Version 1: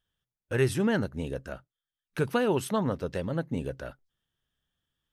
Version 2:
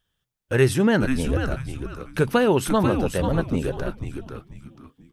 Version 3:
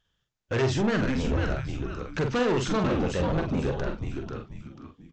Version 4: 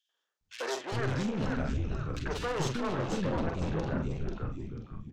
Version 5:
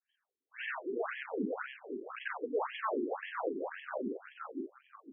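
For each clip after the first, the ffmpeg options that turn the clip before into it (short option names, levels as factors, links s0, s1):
-filter_complex "[0:a]asplit=5[s0][s1][s2][s3][s4];[s1]adelay=490,afreqshift=-140,volume=0.501[s5];[s2]adelay=980,afreqshift=-280,volume=0.15[s6];[s3]adelay=1470,afreqshift=-420,volume=0.0452[s7];[s4]adelay=1960,afreqshift=-560,volume=0.0135[s8];[s0][s5][s6][s7][s8]amix=inputs=5:normalize=0,volume=2.24"
-filter_complex "[0:a]aresample=16000,asoftclip=type=tanh:threshold=0.075,aresample=44100,asplit=2[s0][s1];[s1]adelay=45,volume=0.531[s2];[s0][s2]amix=inputs=2:normalize=0"
-filter_complex "[0:a]aeval=exprs='(tanh(20*val(0)+0.45)-tanh(0.45))/20':c=same,acrossover=split=370|2400[s0][s1][s2];[s1]adelay=90[s3];[s0]adelay=410[s4];[s4][s3][s2]amix=inputs=3:normalize=0"
-af "afftfilt=real='re*between(b*sr/1024,300*pow(2400/300,0.5+0.5*sin(2*PI*1.9*pts/sr))/1.41,300*pow(2400/300,0.5+0.5*sin(2*PI*1.9*pts/sr))*1.41)':imag='im*between(b*sr/1024,300*pow(2400/300,0.5+0.5*sin(2*PI*1.9*pts/sr))/1.41,300*pow(2400/300,0.5+0.5*sin(2*PI*1.9*pts/sr))*1.41)':win_size=1024:overlap=0.75,volume=1.68"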